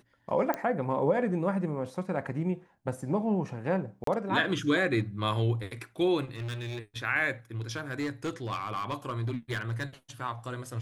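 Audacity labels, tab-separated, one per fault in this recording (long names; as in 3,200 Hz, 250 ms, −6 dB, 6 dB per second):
0.540000	0.540000	click −16 dBFS
4.040000	4.070000	drop-out 33 ms
6.350000	6.790000	clipping −33 dBFS
7.620000	9.840000	clipping −27 dBFS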